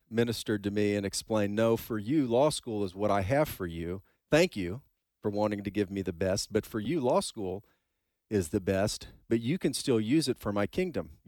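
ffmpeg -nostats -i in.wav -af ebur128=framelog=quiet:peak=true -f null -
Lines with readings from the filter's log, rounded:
Integrated loudness:
  I:         -30.3 LUFS
  Threshold: -40.5 LUFS
Loudness range:
  LRA:         3.0 LU
  Threshold: -50.9 LUFS
  LRA low:   -32.2 LUFS
  LRA high:  -29.3 LUFS
True peak:
  Peak:      -11.8 dBFS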